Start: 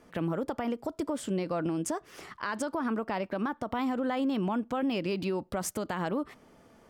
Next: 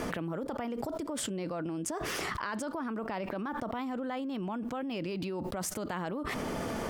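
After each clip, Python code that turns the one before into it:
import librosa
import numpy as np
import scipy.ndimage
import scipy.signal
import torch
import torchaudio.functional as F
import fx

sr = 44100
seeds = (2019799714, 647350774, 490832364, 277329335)

y = fx.env_flatten(x, sr, amount_pct=100)
y = F.gain(torch.from_numpy(y), -8.5).numpy()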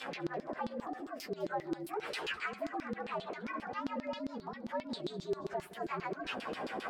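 y = fx.partial_stretch(x, sr, pct=117)
y = fx.filter_lfo_bandpass(y, sr, shape='saw_down', hz=7.5, low_hz=300.0, high_hz=4700.0, q=1.8)
y = fx.echo_feedback(y, sr, ms=204, feedback_pct=32, wet_db=-19.5)
y = F.gain(torch.from_numpy(y), 7.0).numpy()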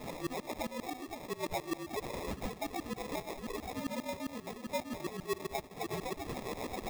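y = fx.sample_hold(x, sr, seeds[0], rate_hz=1500.0, jitter_pct=0)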